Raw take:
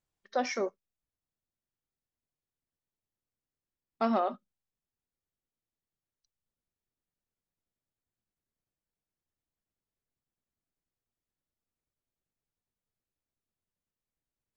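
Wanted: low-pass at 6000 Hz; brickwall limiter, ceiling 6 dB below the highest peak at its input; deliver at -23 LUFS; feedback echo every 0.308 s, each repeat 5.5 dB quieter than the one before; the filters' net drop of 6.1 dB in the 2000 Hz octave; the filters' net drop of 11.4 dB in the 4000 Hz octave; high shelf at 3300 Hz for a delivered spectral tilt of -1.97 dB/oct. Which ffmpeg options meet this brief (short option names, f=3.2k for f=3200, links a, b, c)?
-af "lowpass=6k,equalizer=f=2k:t=o:g=-3.5,highshelf=f=3.3k:g=-7,equalizer=f=4k:t=o:g=-7.5,alimiter=limit=-23dB:level=0:latency=1,aecho=1:1:308|616|924|1232|1540|1848|2156:0.531|0.281|0.149|0.079|0.0419|0.0222|0.0118,volume=14.5dB"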